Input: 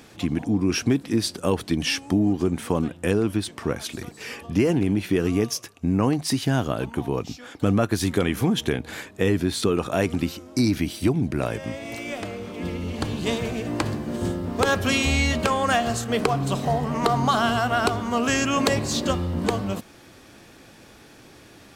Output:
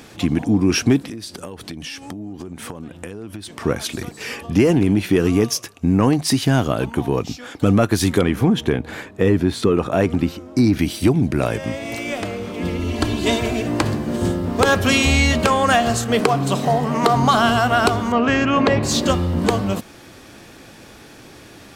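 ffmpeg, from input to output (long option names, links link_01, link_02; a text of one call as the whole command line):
ffmpeg -i in.wav -filter_complex "[0:a]asettb=1/sr,asplit=3[link_01][link_02][link_03];[link_01]atrim=end=1.084[link_04];[link_02]atrim=start=1.08:end=3.6,asetpts=PTS-STARTPTS,afade=type=in:duration=0.004:curve=qsin,afade=type=out:start_time=2.516:duration=0.004:curve=qsin,acompressor=threshold=-34dB:ratio=12:attack=3.2:release=140:knee=1:detection=peak[link_05];[link_03]atrim=start=3.596[link_06];[link_04][link_05]acrossfade=duration=0.004:curve1=hsin:curve2=qsin[link_07];[link_07][link_06]acrossfade=duration=0.004:curve1=qsin:curve2=hsin,asettb=1/sr,asplit=3[link_08][link_09][link_10];[link_08]atrim=end=8.214[link_11];[link_09]atrim=start=8.21:end=10.79,asetpts=PTS-STARTPTS,afade=type=in:duration=0.004:curve=qsin,afade=type=out:start_time=2.576:duration=0.004:curve=qsin,highshelf=frequency=2900:gain=-10.5[link_12];[link_10]atrim=start=10.786[link_13];[link_11][link_12]acrossfade=duration=0.004:curve1=hsin:curve2=qsin[link_14];[link_14][link_13]acrossfade=duration=0.004:curve1=qsin:curve2=hsin,asettb=1/sr,asplit=3[link_15][link_16][link_17];[link_15]atrim=end=12.794[link_18];[link_16]atrim=start=12.79:end=13.65,asetpts=PTS-STARTPTS,afade=type=in:duration=0.004:curve=qsin,afade=type=out:start_time=0.856:duration=0.004:curve=qsin,aecho=1:1:3:0.65,atrim=end_sample=37926[link_19];[link_17]atrim=start=13.646[link_20];[link_18][link_19]acrossfade=duration=0.004:curve1=hsin:curve2=qsin[link_21];[link_21][link_20]acrossfade=duration=0.004:curve1=qsin:curve2=hsin,asettb=1/sr,asplit=3[link_22][link_23][link_24];[link_22]atrim=end=16.204[link_25];[link_23]atrim=start=16.2:end=17.16,asetpts=PTS-STARTPTS,afade=type=in:duration=0.004:curve=qsin,afade=type=out:start_time=0.956:duration=0.004:curve=qsin,highpass=130[link_26];[link_24]atrim=start=17.156[link_27];[link_25][link_26]acrossfade=duration=0.004:curve1=hsin:curve2=qsin[link_28];[link_28][link_27]acrossfade=duration=0.004:curve1=qsin:curve2=hsin,asettb=1/sr,asplit=3[link_29][link_30][link_31];[link_29]atrim=end=18.124[link_32];[link_30]atrim=start=18.12:end=18.83,asetpts=PTS-STARTPTS,afade=type=in:duration=0.004:curve=qsin,afade=type=out:start_time=0.706:duration=0.004:curve=qsin,lowpass=2600[link_33];[link_31]atrim=start=18.826[link_34];[link_32][link_33]acrossfade=duration=0.004:curve1=hsin:curve2=qsin[link_35];[link_35][link_34]acrossfade=duration=0.004:curve1=qsin:curve2=hsin,acontrast=54" out.wav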